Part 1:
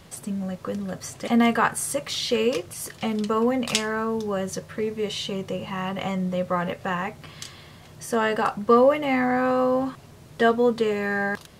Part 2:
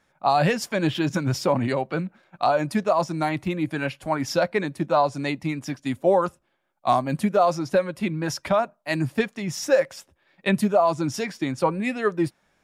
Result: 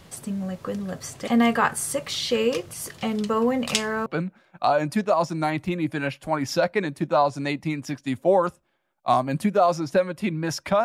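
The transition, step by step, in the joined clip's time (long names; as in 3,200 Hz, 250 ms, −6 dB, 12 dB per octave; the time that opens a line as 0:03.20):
part 1
0:04.06: continue with part 2 from 0:01.85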